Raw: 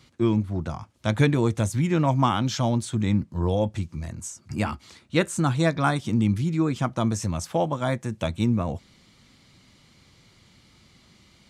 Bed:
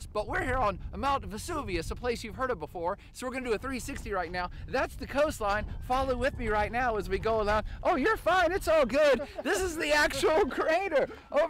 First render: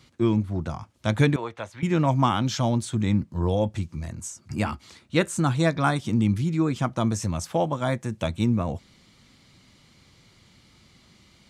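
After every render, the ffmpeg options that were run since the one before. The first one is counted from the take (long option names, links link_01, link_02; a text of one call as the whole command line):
ffmpeg -i in.wav -filter_complex "[0:a]asettb=1/sr,asplit=3[link_01][link_02][link_03];[link_01]atrim=end=1.364[link_04];[link_02]atrim=start=1.36:end=1.83,asetpts=PTS-STARTPTS,afade=type=in:duration=0.004:curve=qsin,afade=type=out:start_time=0.466:duration=0.004:curve=qsin,acrossover=split=530 3600:gain=0.1 1 0.0708[link_05][link_06][link_07];[link_05][link_06][link_07]amix=inputs=3:normalize=0[link_08];[link_03]atrim=start=1.826[link_09];[link_04][link_08]acrossfade=duration=0.004:curve1=hsin:curve2=qsin[link_10];[link_10][link_09]acrossfade=duration=0.004:curve1=qsin:curve2=hsin" out.wav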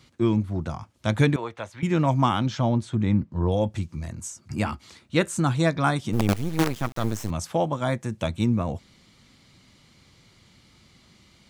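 ffmpeg -i in.wav -filter_complex "[0:a]asettb=1/sr,asplit=3[link_01][link_02][link_03];[link_01]atrim=end=2.464[link_04];[link_02]atrim=start=2.46:end=3.52,asetpts=PTS-STARTPTS,afade=type=in:duration=0.004:curve=qsin,afade=type=out:start_time=1.056:duration=0.004:curve=qsin,aemphasis=mode=reproduction:type=75fm[link_05];[link_03]atrim=start=3.516[link_06];[link_04][link_05]acrossfade=duration=0.004:curve1=hsin:curve2=qsin[link_07];[link_07][link_06]acrossfade=duration=0.004:curve1=qsin:curve2=hsin,asplit=3[link_08][link_09][link_10];[link_08]afade=type=out:start_time=6.12:duration=0.02[link_11];[link_09]acrusher=bits=4:dc=4:mix=0:aa=0.000001,afade=type=in:start_time=6.12:duration=0.02,afade=type=out:start_time=7.29:duration=0.02[link_12];[link_10]afade=type=in:start_time=7.29:duration=0.02[link_13];[link_11][link_12][link_13]amix=inputs=3:normalize=0" out.wav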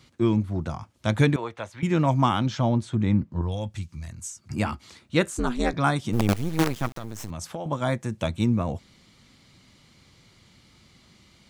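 ffmpeg -i in.wav -filter_complex "[0:a]asettb=1/sr,asplit=3[link_01][link_02][link_03];[link_01]atrim=end=3.414[link_04];[link_02]atrim=start=3.41:end=4.44,asetpts=PTS-STARTPTS,afade=type=in:duration=0.004:curve=qsin,afade=type=out:start_time=1.026:duration=0.004:curve=qsin,equalizer=frequency=410:width=0.41:gain=-11[link_05];[link_03]atrim=start=4.436[link_06];[link_04][link_05]acrossfade=duration=0.004:curve1=hsin:curve2=qsin[link_07];[link_07][link_06]acrossfade=duration=0.004:curve1=qsin:curve2=hsin,asettb=1/sr,asplit=3[link_08][link_09][link_10];[link_08]atrim=end=5.304[link_11];[link_09]atrim=start=5.3:end=5.74,asetpts=PTS-STARTPTS,afade=type=in:duration=0.004:curve=qsin,afade=type=out:start_time=0.436:duration=0.004:curve=qsin,aeval=exprs='val(0)*sin(2*PI*120*n/s)':channel_layout=same[link_12];[link_10]atrim=start=5.736[link_13];[link_11][link_12]acrossfade=duration=0.004:curve1=hsin:curve2=qsin[link_14];[link_14][link_13]acrossfade=duration=0.004:curve1=qsin:curve2=hsin,asettb=1/sr,asplit=3[link_15][link_16][link_17];[link_15]atrim=end=6.924[link_18];[link_16]atrim=start=6.92:end=7.66,asetpts=PTS-STARTPTS,afade=type=in:duration=0.004:curve=qsin,afade=type=out:start_time=0.736:duration=0.004:curve=qsin,acompressor=threshold=-29dB:ratio=10:attack=3.2:release=140:knee=1:detection=peak[link_19];[link_17]atrim=start=7.656[link_20];[link_18][link_19]acrossfade=duration=0.004:curve1=hsin:curve2=qsin[link_21];[link_21][link_20]acrossfade=duration=0.004:curve1=qsin:curve2=hsin" out.wav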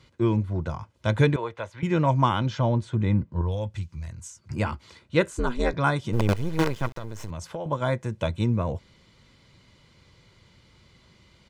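ffmpeg -i in.wav -af "lowpass=frequency=3600:poles=1,aecho=1:1:2:0.4" out.wav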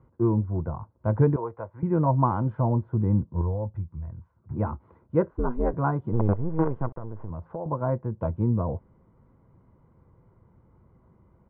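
ffmpeg -i in.wav -af "lowpass=frequency=1100:width=0.5412,lowpass=frequency=1100:width=1.3066,bandreject=frequency=580:width=12" out.wav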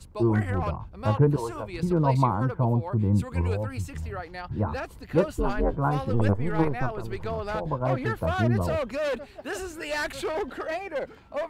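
ffmpeg -i in.wav -i bed.wav -filter_complex "[1:a]volume=-4.5dB[link_01];[0:a][link_01]amix=inputs=2:normalize=0" out.wav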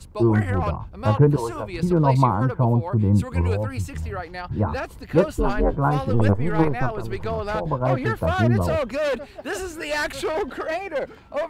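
ffmpeg -i in.wav -af "volume=4.5dB" out.wav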